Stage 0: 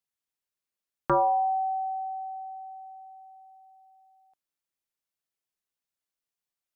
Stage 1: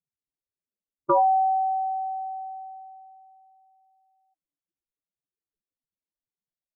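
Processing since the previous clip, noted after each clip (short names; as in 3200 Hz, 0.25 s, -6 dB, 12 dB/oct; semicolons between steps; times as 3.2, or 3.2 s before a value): spectral contrast raised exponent 3.4; low-pass opened by the level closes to 390 Hz, open at -26.5 dBFS; gain +4 dB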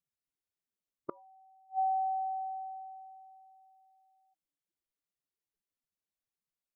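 flipped gate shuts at -21 dBFS, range -37 dB; gain -2 dB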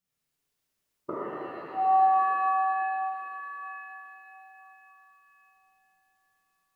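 shimmer reverb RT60 3.7 s, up +7 st, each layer -8 dB, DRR -11 dB; gain +2 dB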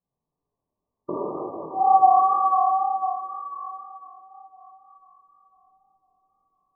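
brick-wall FIR low-pass 1200 Hz; chorus 2 Hz, delay 19 ms, depth 7.2 ms; gain +9 dB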